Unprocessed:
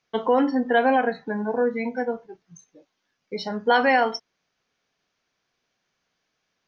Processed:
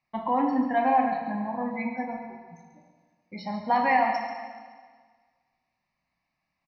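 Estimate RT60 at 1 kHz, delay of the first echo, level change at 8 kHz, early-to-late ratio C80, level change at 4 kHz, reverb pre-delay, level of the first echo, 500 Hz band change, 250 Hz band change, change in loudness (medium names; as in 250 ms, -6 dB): 1.6 s, 138 ms, no reading, 5.5 dB, -12.0 dB, 24 ms, -11.0 dB, -9.0 dB, -3.0 dB, -3.5 dB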